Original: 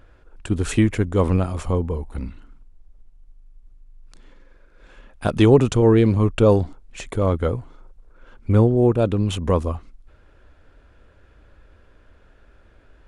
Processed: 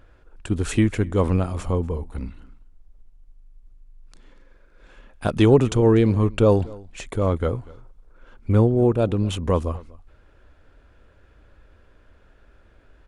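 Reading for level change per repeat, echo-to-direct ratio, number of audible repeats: no steady repeat, -22.5 dB, 1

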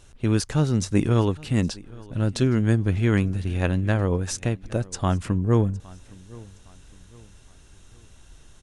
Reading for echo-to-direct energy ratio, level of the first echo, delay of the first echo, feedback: -22.0 dB, -22.5 dB, 0.813 s, 38%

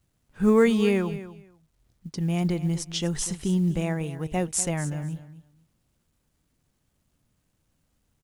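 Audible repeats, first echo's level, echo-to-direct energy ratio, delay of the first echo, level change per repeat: 2, -14.5 dB, -14.5 dB, 0.244 s, -15.5 dB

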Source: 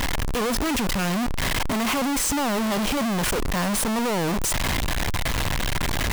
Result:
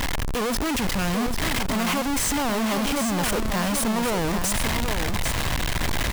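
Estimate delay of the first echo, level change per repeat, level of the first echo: 0.794 s, no steady repeat, -6.5 dB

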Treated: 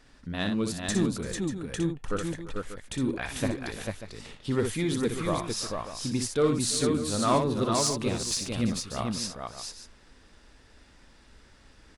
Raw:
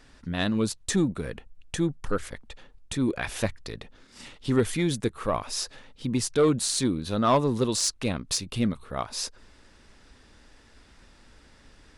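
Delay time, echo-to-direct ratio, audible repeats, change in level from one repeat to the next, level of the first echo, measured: 60 ms, -1.5 dB, 4, no steady repeat, -6.5 dB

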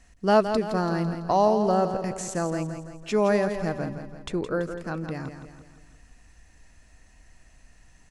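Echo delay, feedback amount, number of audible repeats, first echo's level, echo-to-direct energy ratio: 0.167 s, 50%, 5, -9.0 dB, -8.0 dB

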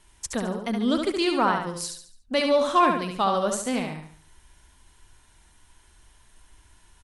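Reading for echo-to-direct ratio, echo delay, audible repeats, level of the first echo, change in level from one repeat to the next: -4.5 dB, 71 ms, 4, -5.0 dB, -8.0 dB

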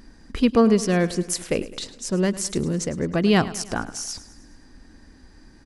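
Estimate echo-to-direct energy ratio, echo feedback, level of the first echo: -15.0 dB, 55%, -16.5 dB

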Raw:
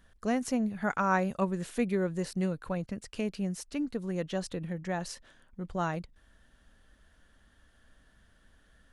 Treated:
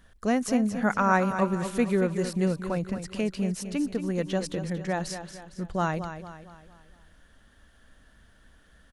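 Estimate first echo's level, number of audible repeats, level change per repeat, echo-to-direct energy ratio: -10.0 dB, 4, -7.0 dB, -9.0 dB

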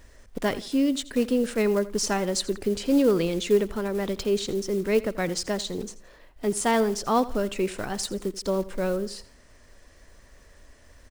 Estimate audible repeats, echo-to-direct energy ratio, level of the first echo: 2, -17.5 dB, -18.0 dB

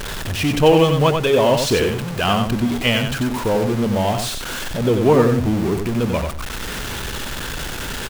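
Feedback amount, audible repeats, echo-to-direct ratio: 16%, 2, -5.5 dB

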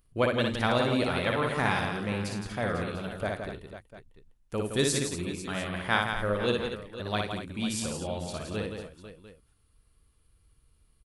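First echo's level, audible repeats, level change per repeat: -3.0 dB, 6, no steady repeat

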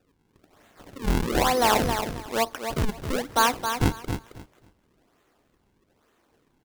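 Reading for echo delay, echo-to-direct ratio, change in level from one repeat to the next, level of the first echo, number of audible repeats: 0.269 s, -7.5 dB, -14.5 dB, -7.5 dB, 2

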